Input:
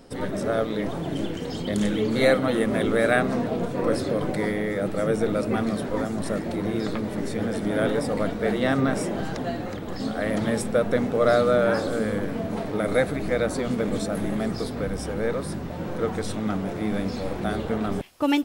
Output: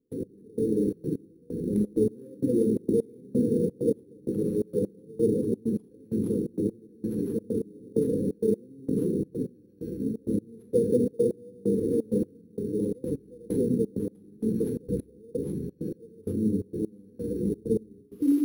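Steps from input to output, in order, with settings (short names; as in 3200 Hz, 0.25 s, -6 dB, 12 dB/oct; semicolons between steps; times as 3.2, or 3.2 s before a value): rotary speaker horn 0.8 Hz; brick-wall FIR band-stop 510–10000 Hz; on a send at -6.5 dB: reverb RT60 0.55 s, pre-delay 28 ms; on the sum: step gate ".x...xxx" 130 bpm -24 dB; HPF 190 Hz 6 dB/oct; in parallel at -4.5 dB: sample-rate reducer 10000 Hz, jitter 0%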